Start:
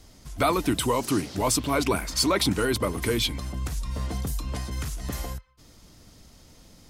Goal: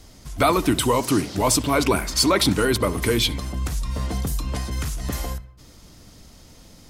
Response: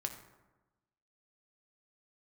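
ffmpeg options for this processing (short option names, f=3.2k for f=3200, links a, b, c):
-filter_complex "[0:a]asplit=2[a][b];[1:a]atrim=start_sample=2205,highshelf=f=5.3k:g=-11.5,adelay=67[c];[b][c]afir=irnorm=-1:irlink=0,volume=-17.5dB[d];[a][d]amix=inputs=2:normalize=0,volume=4.5dB"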